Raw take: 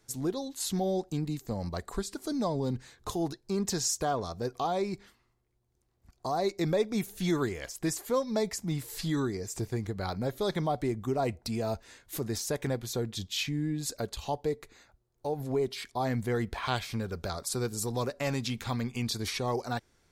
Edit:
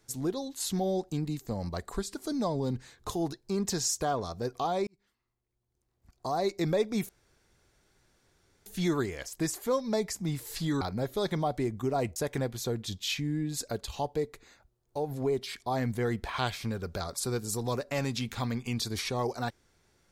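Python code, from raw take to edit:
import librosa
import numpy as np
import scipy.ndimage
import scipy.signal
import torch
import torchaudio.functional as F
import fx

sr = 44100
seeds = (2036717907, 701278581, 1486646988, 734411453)

y = fx.edit(x, sr, fx.fade_in_span(start_s=4.87, length_s=1.48),
    fx.insert_room_tone(at_s=7.09, length_s=1.57),
    fx.cut(start_s=9.24, length_s=0.81),
    fx.cut(start_s=11.4, length_s=1.05), tone=tone)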